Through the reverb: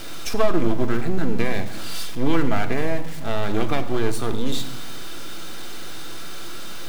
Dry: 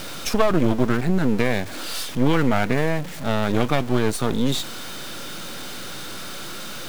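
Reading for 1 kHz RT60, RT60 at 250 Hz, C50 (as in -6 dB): 0.80 s, 1.3 s, 11.5 dB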